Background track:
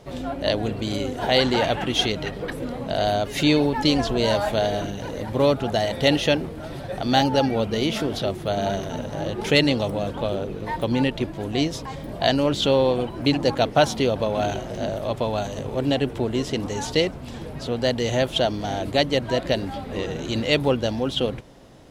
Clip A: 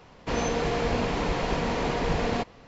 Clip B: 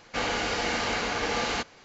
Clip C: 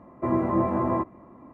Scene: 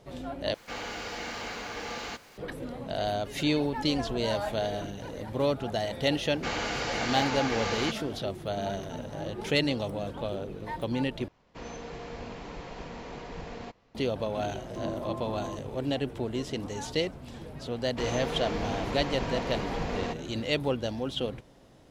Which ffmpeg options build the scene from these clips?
-filter_complex "[2:a]asplit=2[a][b];[1:a]asplit=2[c][d];[0:a]volume=-8dB[e];[a]aeval=exprs='val(0)+0.5*0.00841*sgn(val(0))':c=same[f];[3:a]lowpass=1.3k[g];[e]asplit=3[h][i][j];[h]atrim=end=0.544[k];[f]atrim=end=1.84,asetpts=PTS-STARTPTS,volume=-9.5dB[l];[i]atrim=start=2.376:end=11.284[m];[c]atrim=end=2.67,asetpts=PTS-STARTPTS,volume=-14dB[n];[j]atrim=start=13.946[o];[b]atrim=end=1.84,asetpts=PTS-STARTPTS,volume=-3.5dB,afade=t=in:d=0.004:c=hsin,afade=t=out:st=1.836:d=0.004:c=hsin,adelay=6290[p];[g]atrim=end=1.53,asetpts=PTS-STARTPTS,volume=-13dB,afade=t=in:d=0.004:c=hsin,afade=t=out:st=1.526:d=0.004:c=hsin,adelay=14530[q];[d]atrim=end=2.67,asetpts=PTS-STARTPTS,volume=-6.5dB,afade=t=in:d=0.004:c=hsin,afade=t=out:st=2.666:d=0.004:c=hsin,adelay=17700[r];[k][l]acrossfade=d=0.004:c1=hsin:c2=hsin[s];[s][m]acrossfade=d=0.004:c1=hsin:c2=hsin[t];[t][n]acrossfade=d=0.004:c1=hsin:c2=hsin[u];[u][o]acrossfade=d=0.004:c1=hsin:c2=hsin[v];[v][p][q][r]amix=inputs=4:normalize=0"

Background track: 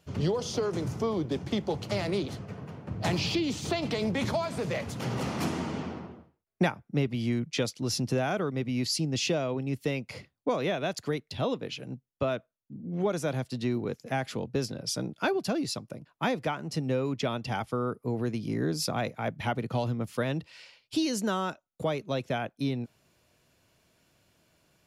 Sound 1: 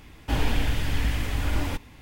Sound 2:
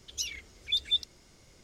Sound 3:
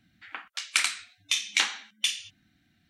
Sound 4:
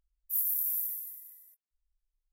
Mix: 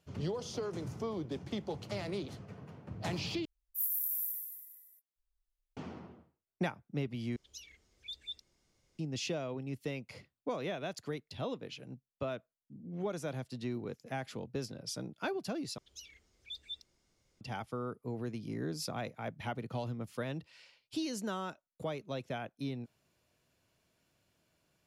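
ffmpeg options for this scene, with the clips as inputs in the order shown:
-filter_complex "[2:a]asplit=2[a][b];[0:a]volume=-8.5dB[c];[a]bandreject=f=1.4k:w=28[d];[c]asplit=4[e][f][g][h];[e]atrim=end=3.454[i];[4:a]atrim=end=2.32,asetpts=PTS-STARTPTS,volume=-4dB[j];[f]atrim=start=5.766:end=7.364[k];[d]atrim=end=1.63,asetpts=PTS-STARTPTS,volume=-16dB[l];[g]atrim=start=8.986:end=15.784[m];[b]atrim=end=1.63,asetpts=PTS-STARTPTS,volume=-16.5dB[n];[h]atrim=start=17.406[o];[i][j]acrossfade=d=0.004:c1=hsin:c2=hsin[p];[p][k]acrossfade=d=0.004:c1=hsin:c2=hsin[q];[q][l]acrossfade=d=0.004:c1=hsin:c2=hsin[r];[r][m]acrossfade=d=0.004:c1=hsin:c2=hsin[s];[s][n]acrossfade=d=0.004:c1=hsin:c2=hsin[t];[t][o]acrossfade=d=0.004:c1=hsin:c2=hsin"

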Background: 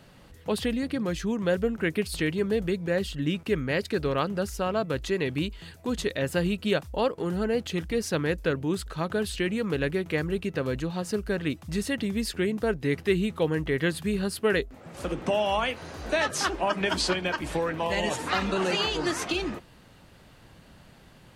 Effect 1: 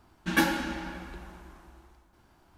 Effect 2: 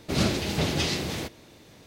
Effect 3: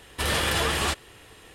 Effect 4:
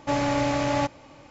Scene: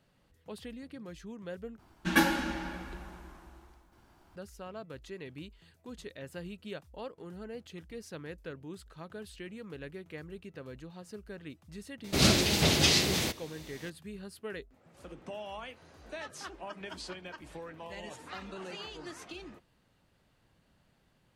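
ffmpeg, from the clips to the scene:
-filter_complex "[0:a]volume=-16.5dB[a];[2:a]highshelf=f=2.3k:g=7.5[b];[a]asplit=2[c][d];[c]atrim=end=1.794[e];[1:a]atrim=end=2.57,asetpts=PTS-STARTPTS,volume=-0.5dB[f];[d]atrim=start=4.356[g];[b]atrim=end=1.86,asetpts=PTS-STARTPTS,volume=-1dB,afade=t=in:d=0.004:c=hsin,afade=t=out:st=1.856:d=0.004:c=hsin,adelay=12040[h];[e][f]acrossfade=d=0.004:c1=hsin:c2=hsin[i];[i][g]acrossfade=d=0.004:c1=hsin:c2=hsin[j];[j][h]amix=inputs=2:normalize=0"

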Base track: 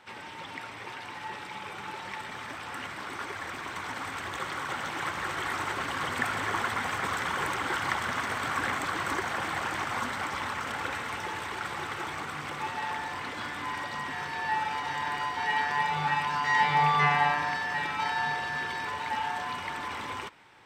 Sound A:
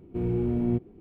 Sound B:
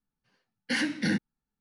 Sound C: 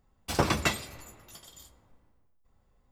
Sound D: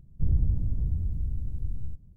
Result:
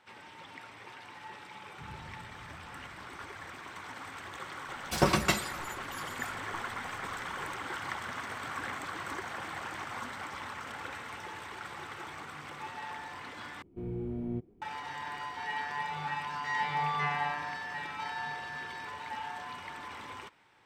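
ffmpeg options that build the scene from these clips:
-filter_complex "[0:a]volume=-8dB[a];[4:a]highpass=170[b];[3:a]aecho=1:1:5.4:0.57[c];[1:a]bandreject=f=2.7k:w=20[d];[a]asplit=2[e][f];[e]atrim=end=13.624[g];[d]atrim=end=1,asetpts=PTS-STARTPTS,volume=-10dB[h];[f]atrim=start=14.616[i];[b]atrim=end=2.16,asetpts=PTS-STARTPTS,volume=-12dB,afade=t=in:d=0.004:c=hsin,afade=t=out:st=2.156:d=0.004:c=hsin,adelay=1590[j];[c]atrim=end=2.91,asetpts=PTS-STARTPTS,volume=-1dB,afade=t=in:d=0.004:c=hsin,afade=t=out:st=2.906:d=0.004:c=hsin,adelay=4630[k];[g][h]acrossfade=d=0.004:c1=hsin:c2=hsin[l];[l][i]acrossfade=d=0.004:c1=hsin:c2=hsin[m];[m][j][k]amix=inputs=3:normalize=0"

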